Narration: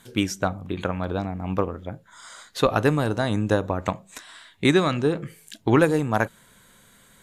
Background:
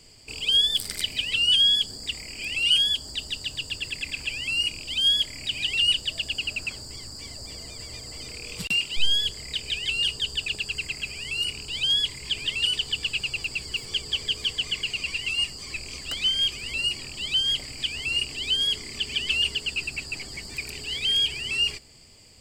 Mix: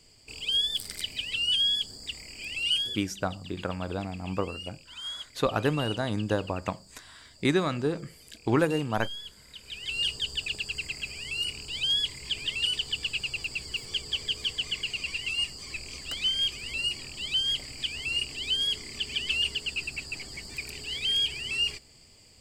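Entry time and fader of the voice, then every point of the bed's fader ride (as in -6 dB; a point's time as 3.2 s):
2.80 s, -6.0 dB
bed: 2.74 s -6 dB
3.09 s -16.5 dB
9.55 s -16.5 dB
10.01 s -3.5 dB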